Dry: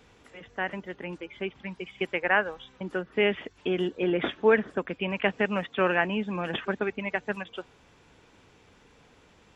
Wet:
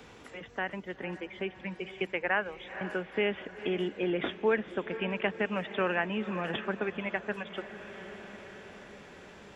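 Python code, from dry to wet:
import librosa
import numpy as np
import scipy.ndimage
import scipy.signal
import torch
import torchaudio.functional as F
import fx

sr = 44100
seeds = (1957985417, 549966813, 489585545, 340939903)

p1 = x + fx.echo_diffused(x, sr, ms=483, feedback_pct=58, wet_db=-15.0, dry=0)
p2 = fx.band_squash(p1, sr, depth_pct=40)
y = F.gain(torch.from_numpy(p2), -4.0).numpy()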